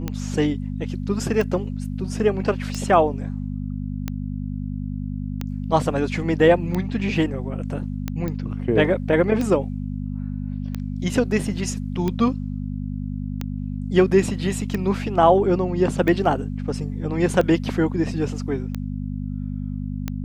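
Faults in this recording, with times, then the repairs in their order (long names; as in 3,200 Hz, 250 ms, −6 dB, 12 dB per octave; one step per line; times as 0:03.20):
mains hum 50 Hz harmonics 5 −28 dBFS
scratch tick 45 rpm −13 dBFS
0:08.28: click −16 dBFS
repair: click removal
hum removal 50 Hz, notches 5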